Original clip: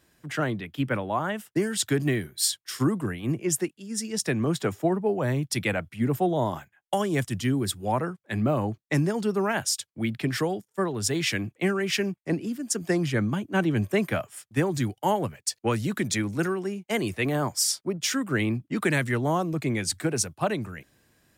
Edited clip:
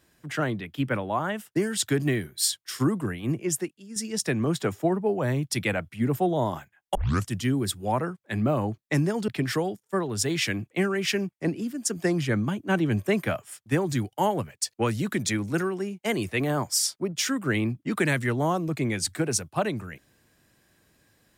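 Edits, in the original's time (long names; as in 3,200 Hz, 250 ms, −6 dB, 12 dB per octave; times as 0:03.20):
0:03.33–0:03.96: fade out, to −7 dB
0:06.95: tape start 0.32 s
0:09.28–0:10.13: remove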